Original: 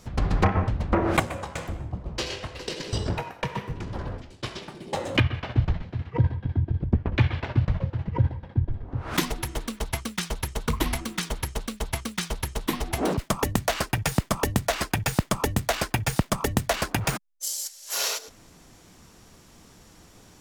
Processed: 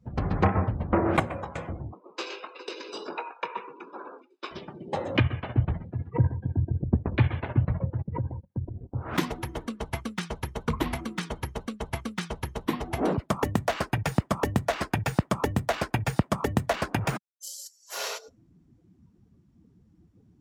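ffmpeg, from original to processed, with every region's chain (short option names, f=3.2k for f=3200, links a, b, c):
-filter_complex "[0:a]asettb=1/sr,asplit=3[a][b][c];[a]atrim=end=1.924[d];[b]atrim=start=1.92:end=4.51,asetpts=PTS-STARTPTS,afade=t=in:d=0.004:c=qsin,afade=t=out:st=2.586:d=0.004:c=qsin,highpass=f=360:w=0.5412,highpass=f=360:w=1.3066,aecho=1:1:0.8:0.49,atrim=end_sample=114219[e];[c]atrim=start=4.506[f];[d][e]acrossfade=d=0.004:c1=hsin:c2=qsin[g];[g][f]acrossfade=d=0.004:c1=qsin:c2=hsin,asettb=1/sr,asplit=3[h][i][j];[h]atrim=end=8.024[k];[i]atrim=start=8.02:end=8.96,asetpts=PTS-STARTPTS,afade=t=in:d=0.004:c=qsin,afade=t=out:st=0.936:d=0.004:c=qsin,agate=range=-19dB:threshold=-37dB:ratio=16:release=100:detection=peak,acompressor=threshold=-26dB:ratio=3:attack=3.2:release=140:knee=1:detection=peak[l];[j]atrim=start=8.956[m];[k][l]acrossfade=d=0.004:c1=hsin:c2=qsin[n];[n][m]acrossfade=d=0.004:c1=qsin:c2=hsin,afftdn=nr=24:nf=-44,highpass=77,highshelf=f=3.2k:g=-11"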